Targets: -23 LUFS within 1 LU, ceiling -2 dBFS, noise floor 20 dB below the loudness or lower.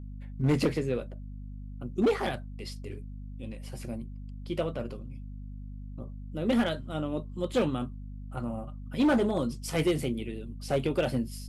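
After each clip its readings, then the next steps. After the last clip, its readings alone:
clipped 1.1%; flat tops at -19.5 dBFS; hum 50 Hz; harmonics up to 250 Hz; hum level -38 dBFS; loudness -31.0 LUFS; peak -19.5 dBFS; loudness target -23.0 LUFS
-> clip repair -19.5 dBFS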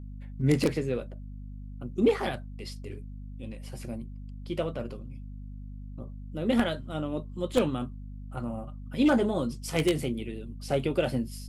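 clipped 0.0%; hum 50 Hz; harmonics up to 250 Hz; hum level -38 dBFS
-> de-hum 50 Hz, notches 5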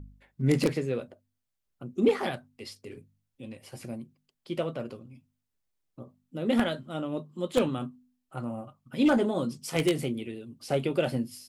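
hum none; loudness -29.5 LUFS; peak -10.5 dBFS; loudness target -23.0 LUFS
-> gain +6.5 dB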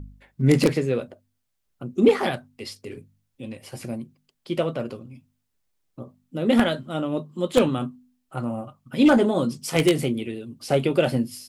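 loudness -23.0 LUFS; peak -4.0 dBFS; noise floor -75 dBFS

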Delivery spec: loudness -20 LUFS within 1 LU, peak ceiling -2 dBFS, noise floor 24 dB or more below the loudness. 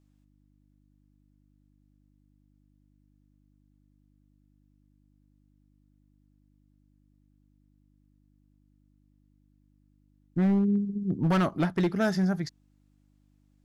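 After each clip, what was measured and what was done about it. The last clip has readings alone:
clipped 0.9%; flat tops at -20.0 dBFS; hum 50 Hz; harmonics up to 300 Hz; hum level -63 dBFS; loudness -27.0 LUFS; peak -20.0 dBFS; loudness target -20.0 LUFS
-> clip repair -20 dBFS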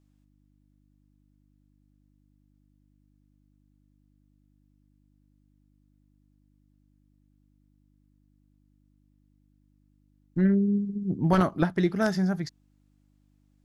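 clipped 0.0%; hum 50 Hz; harmonics up to 300 Hz; hum level -63 dBFS
-> de-hum 50 Hz, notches 6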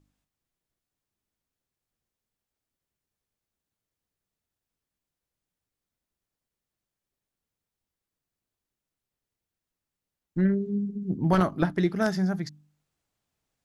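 hum none; loudness -26.5 LUFS; peak -10.5 dBFS; loudness target -20.0 LUFS
-> gain +6.5 dB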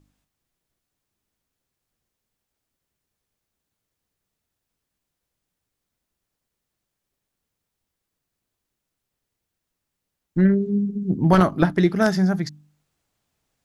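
loudness -20.0 LUFS; peak -4.0 dBFS; noise floor -82 dBFS

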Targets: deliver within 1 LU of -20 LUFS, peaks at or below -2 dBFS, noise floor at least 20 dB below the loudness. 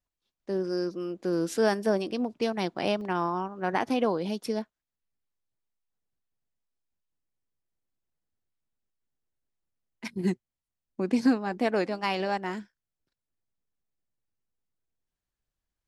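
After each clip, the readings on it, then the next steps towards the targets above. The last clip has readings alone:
dropouts 1; longest dropout 1.6 ms; loudness -29.0 LUFS; peak -12.0 dBFS; loudness target -20.0 LUFS
-> interpolate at 3.01, 1.6 ms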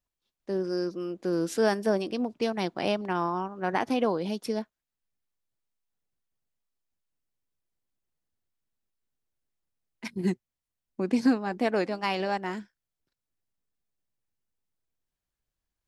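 dropouts 0; loudness -29.0 LUFS; peak -12.0 dBFS; loudness target -20.0 LUFS
-> gain +9 dB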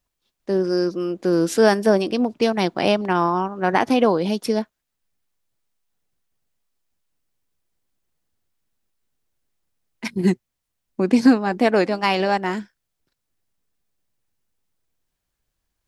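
loudness -20.0 LUFS; peak -3.0 dBFS; noise floor -79 dBFS

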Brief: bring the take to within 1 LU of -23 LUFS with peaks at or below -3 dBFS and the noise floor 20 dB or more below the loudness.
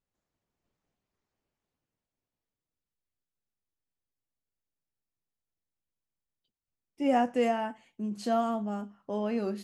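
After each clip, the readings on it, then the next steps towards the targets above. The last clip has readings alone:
loudness -30.5 LUFS; peak -15.5 dBFS; loudness target -23.0 LUFS
-> gain +7.5 dB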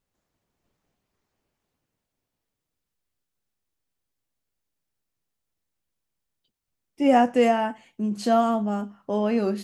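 loudness -23.0 LUFS; peak -8.0 dBFS; noise floor -83 dBFS

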